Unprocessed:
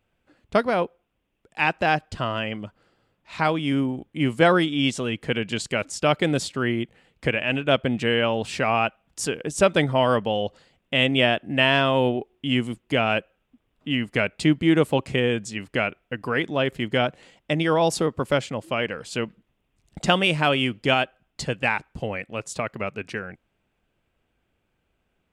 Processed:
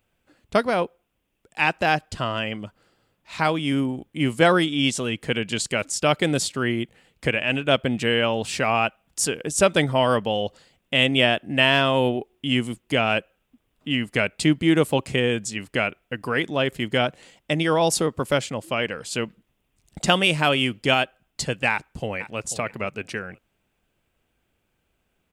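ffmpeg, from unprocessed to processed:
-filter_complex "[0:a]asplit=2[a][b];[b]afade=t=in:st=21.71:d=0.01,afade=t=out:st=22.4:d=0.01,aecho=0:1:490|980:0.199526|0.0299289[c];[a][c]amix=inputs=2:normalize=0,highshelf=f=5.6k:g=10"

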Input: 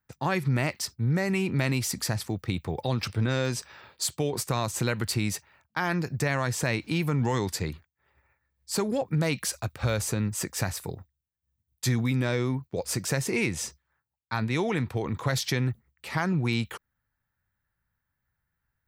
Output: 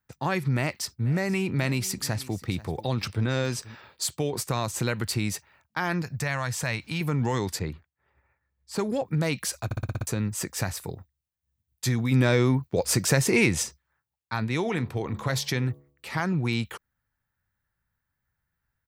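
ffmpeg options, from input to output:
-filter_complex "[0:a]asplit=3[a][b][c];[a]afade=t=out:st=0.99:d=0.02[d];[b]aecho=1:1:486:0.112,afade=t=in:st=0.99:d=0.02,afade=t=out:st=3.74:d=0.02[e];[c]afade=t=in:st=3.74:d=0.02[f];[d][e][f]amix=inputs=3:normalize=0,asettb=1/sr,asplit=3[g][h][i];[g]atrim=end=6.024[j];[h]atrim=start=6.02:end=7.01,asetpts=PTS-STARTPTS,afade=t=in:d=0.004:c=qsin,afade=t=out:st=0.986:d=0.004:c=qsin,equalizer=f=340:w=1.2:g=-10.5[k];[i]atrim=start=7.006[l];[j][k]acrossfade=d=0.004:c1=hsin:c2=qsin[m];[m][l]acrossfade=d=0.004:c1=qsin:c2=hsin,asettb=1/sr,asplit=3[n][o][p];[n]atrim=end=7.594[q];[o]atrim=start=7.59:end=8.79,asetpts=PTS-STARTPTS,afade=t=in:d=0.004:c=qsin,afade=t=out:st=1.196:d=0.004:c=qsin,highshelf=f=3.8k:g=-11[r];[p]atrim=start=8.786[s];[q][r]acrossfade=d=0.004:c1=hsin:c2=qsin[t];[t][s]acrossfade=d=0.004:c1=qsin:c2=hsin,asplit=3[u][v][w];[u]afade=t=out:st=12.11:d=0.02[x];[v]acontrast=51,afade=t=in:st=12.11:d=0.02,afade=t=out:st=13.62:d=0.02[y];[w]afade=t=in:st=13.62:d=0.02[z];[x][y][z]amix=inputs=3:normalize=0,asettb=1/sr,asplit=3[aa][ab][ac];[aa]atrim=end=14.614[ad];[ab]atrim=start=14.61:end=16.2,asetpts=PTS-STARTPTS,afade=t=in:d=0.004:c=qsin,afade=t=out:st=1.586:d=0.004:c=qsin,bandreject=f=70.43:t=h:w=4,bandreject=f=140.86:t=h:w=4,bandreject=f=211.29:t=h:w=4,bandreject=f=281.72:t=h:w=4,bandreject=f=352.15:t=h:w=4,bandreject=f=422.58:t=h:w=4,bandreject=f=493.01:t=h:w=4,bandreject=f=563.44:t=h:w=4,bandreject=f=633.87:t=h:w=4,bandreject=f=704.3:t=h:w=4,bandreject=f=774.73:t=h:w=4,bandreject=f=845.16:t=h:w=4,bandreject=f=915.59:t=h:w=4,bandreject=f=986.02:t=h:w=4,bandreject=f=1.05645k:t=h:w=4,bandreject=f=1.12688k:t=h:w=4,bandreject=f=1.19731k:t=h:w=4[ae];[ac]atrim=start=16.196[af];[ad][ae]acrossfade=d=0.004:c1=hsin:c2=qsin[ag];[ag][af]acrossfade=d=0.004:c1=qsin:c2=hsin,asplit=8[ah][ai][aj][ak][al][am][an][ao];[ah]atrim=end=9.712[ap];[ai]atrim=start=9.648:end=9.712[aq];[aj]atrim=start=9.648:end=9.712[ar];[ak]atrim=start=9.648:end=9.712[as];[al]atrim=start=9.648:end=9.712[at];[am]atrim=start=9.648:end=9.712[au];[an]atrim=start=9.648:end=9.712[av];[ao]atrim=start=10.068[aw];[ap][aq]acrossfade=d=0.004:c1=hsin:c2=hsin[ax];[ax][ar]acrossfade=d=0.004:c1=hsin:c2=hsin[ay];[ay][as]acrossfade=d=0.004:c1=hsin:c2=hsin[az];[az][at]acrossfade=d=0.004:c1=hsin:c2=hsin[ba];[ba][au]acrossfade=d=0.004:c1=hsin:c2=hsin[bb];[bb][av]acrossfade=d=0.004:c1=hsin:c2=hsin[bc];[bc][aw]acrossfade=d=0.004:c1=hsin:c2=hsin"

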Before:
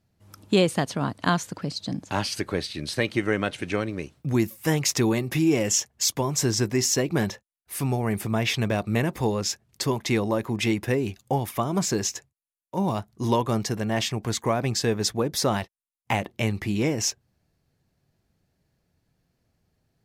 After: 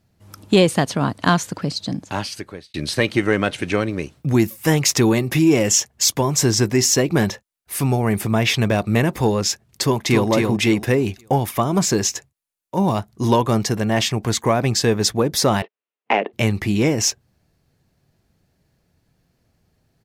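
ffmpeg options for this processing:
-filter_complex "[0:a]asplit=2[a][b];[b]afade=t=in:st=9.83:d=0.01,afade=t=out:st=10.29:d=0.01,aecho=0:1:270|540|810|1080:0.630957|0.189287|0.0567862|0.0170358[c];[a][c]amix=inputs=2:normalize=0,asettb=1/sr,asplit=3[d][e][f];[d]atrim=end=15.624[g];[e]atrim=start=15.62:end=16.33,asetpts=PTS-STARTPTS,afade=t=in:d=0.004:c=qsin,afade=t=out:st=0.706:d=0.004:c=qsin,highpass=f=240:w=0.5412,highpass=f=240:w=1.3066,equalizer=f=430:t=q:w=4:g=9,equalizer=f=650:t=q:w=4:g=3,equalizer=f=2.7k:t=q:w=4:g=3,lowpass=f=3k:w=0.5412,lowpass=f=3k:w=1.3066[h];[f]atrim=start=16.326[i];[g][h]acrossfade=d=0.004:c1=hsin:c2=qsin[j];[j][i]acrossfade=d=0.004:c1=qsin:c2=hsin,asplit=2[k][l];[k]atrim=end=2.74,asetpts=PTS-STARTPTS,afade=t=out:st=1.72:d=1.02[m];[l]atrim=start=2.74,asetpts=PTS-STARTPTS,afade=t=in:d=0.004:c=hsin[n];[m][n]concat=n=2:v=0:a=1,acontrast=73"

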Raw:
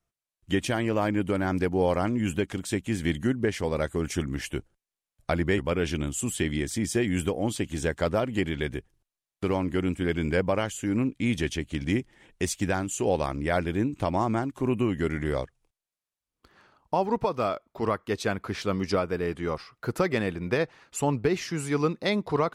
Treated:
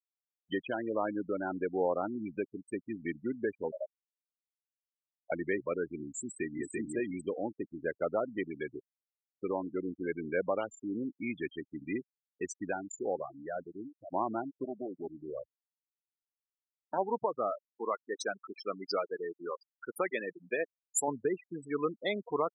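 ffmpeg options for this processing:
-filter_complex "[0:a]asettb=1/sr,asplit=3[a][b][c];[a]atrim=end=3.714[d];[b]atrim=start=3.71:end=5.32,asetpts=PTS-STARTPTS,afade=t=in:d=0.004:c=qsin,afade=t=out:st=1.606:d=0.004:c=qsin,asuperpass=centerf=630:order=8:qfactor=4.3[e];[c]atrim=start=5.316[f];[d][e]acrossfade=d=0.004:c1=hsin:c2=qsin[g];[g][f]acrossfade=d=0.004:c1=qsin:c2=hsin,asplit=2[h][i];[i]afade=t=in:st=6.2:d=0.01,afade=t=out:st=6.77:d=0.01,aecho=0:1:340|680:0.794328|0.0794328[j];[h][j]amix=inputs=2:normalize=0,asettb=1/sr,asplit=3[k][l][m];[k]atrim=end=14.644[n];[l]atrim=start=14.64:end=16.98,asetpts=PTS-STARTPTS,afade=t=in:d=0.004:c=qsin,afade=t=out:st=2.336:d=0.004:c=qsin,aeval=exprs='max(val(0),0)':c=same[o];[m]atrim=start=16.976[p];[n][o]acrossfade=d=0.004:c1=hsin:c2=qsin[q];[q][p]acrossfade=d=0.004:c1=qsin:c2=hsin,asettb=1/sr,asplit=3[r][s][t];[r]atrim=end=17.694[u];[s]atrim=start=17.69:end=21.08,asetpts=PTS-STARTPTS,afade=t=in:d=0.004:c=qsin,afade=t=out:st=3.386:d=0.004:c=qsin,aemphasis=mode=production:type=bsi[v];[t]atrim=start=21.076[w];[u][v]acrossfade=d=0.004:c1=hsin:c2=qsin[x];[x][w]acrossfade=d=0.004:c1=qsin:c2=hsin,asplit=2[y][z];[y]atrim=end=14.12,asetpts=PTS-STARTPTS,afade=t=out:st=12.44:d=1.68:silence=0.281838[aa];[z]atrim=start=14.12,asetpts=PTS-STARTPTS,afade=t=in:d=0.004:c=hsin:silence=0.281838[ab];[aa][ab]concat=n=2:v=0:a=1,afftfilt=real='re*gte(hypot(re,im),0.0794)':imag='im*gte(hypot(re,im),0.0794)':win_size=1024:overlap=0.75,highpass=320,volume=-4.5dB"

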